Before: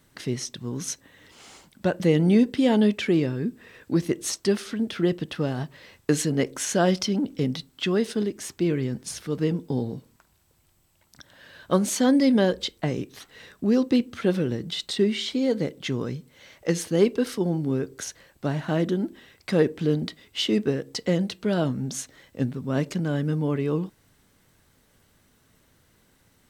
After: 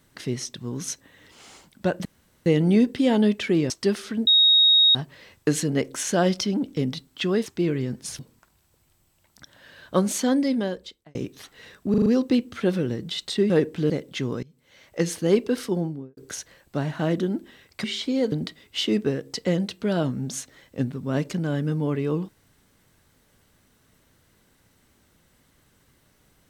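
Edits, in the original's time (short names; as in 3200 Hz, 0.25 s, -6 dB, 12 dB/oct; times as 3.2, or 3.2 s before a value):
2.05 insert room tone 0.41 s
3.29–4.32 cut
4.89–5.57 bleep 3760 Hz -13 dBFS
8.08–8.48 cut
9.21–9.96 cut
11.87–12.92 fade out linear
13.67 stutter 0.04 s, 5 plays
15.11–15.59 swap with 19.53–19.93
16.12–16.68 fade in, from -23.5 dB
17.41–17.86 studio fade out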